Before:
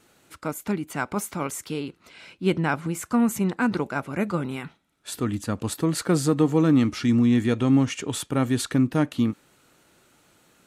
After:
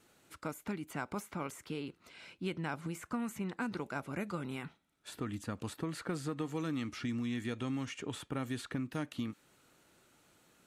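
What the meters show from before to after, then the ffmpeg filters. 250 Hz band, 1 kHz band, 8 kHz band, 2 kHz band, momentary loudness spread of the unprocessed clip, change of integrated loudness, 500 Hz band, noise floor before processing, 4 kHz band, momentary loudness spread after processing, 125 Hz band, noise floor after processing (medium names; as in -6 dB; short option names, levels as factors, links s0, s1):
-16.0 dB, -12.5 dB, -16.5 dB, -11.0 dB, 13 LU, -15.5 dB, -15.0 dB, -62 dBFS, -12.0 dB, 7 LU, -15.0 dB, -70 dBFS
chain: -filter_complex "[0:a]acrossover=split=1300|3000[s0][s1][s2];[s0]acompressor=threshold=0.0355:ratio=4[s3];[s1]acompressor=threshold=0.0126:ratio=4[s4];[s2]acompressor=threshold=0.00562:ratio=4[s5];[s3][s4][s5]amix=inputs=3:normalize=0,volume=0.447"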